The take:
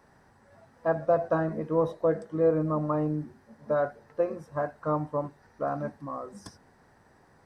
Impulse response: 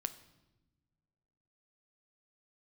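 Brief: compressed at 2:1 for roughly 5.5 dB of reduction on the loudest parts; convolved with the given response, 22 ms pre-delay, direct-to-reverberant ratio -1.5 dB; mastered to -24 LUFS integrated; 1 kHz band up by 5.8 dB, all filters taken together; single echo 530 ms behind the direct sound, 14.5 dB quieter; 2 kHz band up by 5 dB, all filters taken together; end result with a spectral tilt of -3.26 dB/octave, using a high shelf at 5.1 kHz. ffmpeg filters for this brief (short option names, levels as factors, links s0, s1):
-filter_complex "[0:a]equalizer=f=1000:t=o:g=7,equalizer=f=2000:t=o:g=4.5,highshelf=f=5100:g=-7.5,acompressor=threshold=0.0447:ratio=2,aecho=1:1:530:0.188,asplit=2[s0][s1];[1:a]atrim=start_sample=2205,adelay=22[s2];[s1][s2]afir=irnorm=-1:irlink=0,volume=1.26[s3];[s0][s3]amix=inputs=2:normalize=0,volume=1.5"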